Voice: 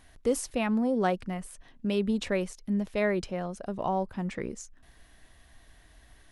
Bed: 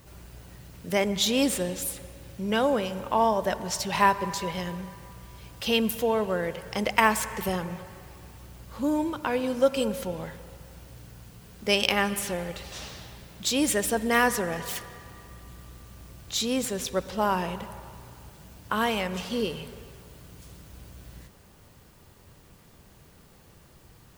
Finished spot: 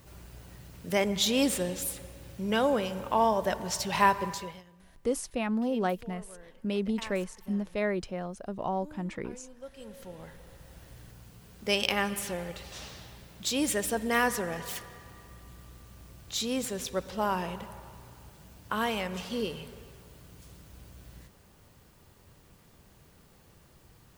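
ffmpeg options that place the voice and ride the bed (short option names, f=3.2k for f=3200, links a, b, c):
-filter_complex "[0:a]adelay=4800,volume=-2.5dB[a];[1:a]volume=17.5dB,afade=t=out:st=4.22:d=0.41:silence=0.0841395,afade=t=in:st=9.76:d=1.08:silence=0.105925[b];[a][b]amix=inputs=2:normalize=0"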